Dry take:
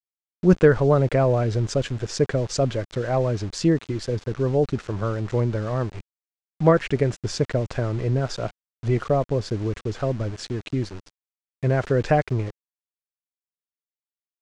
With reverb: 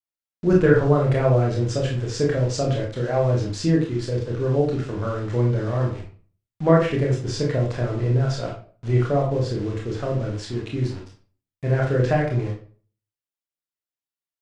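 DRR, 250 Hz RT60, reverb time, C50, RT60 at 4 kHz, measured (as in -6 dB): -2.0 dB, 0.45 s, 0.40 s, 5.5 dB, 0.30 s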